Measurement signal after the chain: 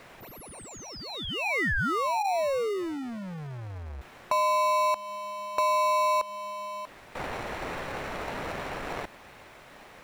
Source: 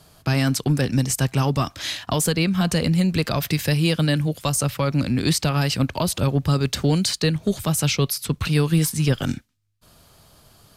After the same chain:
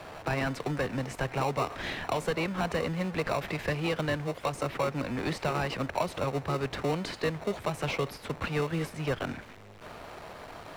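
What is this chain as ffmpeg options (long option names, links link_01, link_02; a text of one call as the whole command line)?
ffmpeg -i in.wav -filter_complex "[0:a]aeval=exprs='val(0)+0.5*0.0299*sgn(val(0))':channel_layout=same,acrossover=split=490 2400:gain=0.126 1 0.112[link_01][link_02][link_03];[link_01][link_02][link_03]amix=inputs=3:normalize=0,acrossover=split=160|3000[link_04][link_05][link_06];[link_05]acompressor=threshold=-26dB:ratio=2[link_07];[link_04][link_07][link_06]amix=inputs=3:normalize=0,asplit=2[link_08][link_09];[link_09]acrusher=samples=27:mix=1:aa=0.000001,volume=-3dB[link_10];[link_08][link_10]amix=inputs=2:normalize=0,highshelf=frequency=9200:gain=-10.5,volume=-2.5dB" out.wav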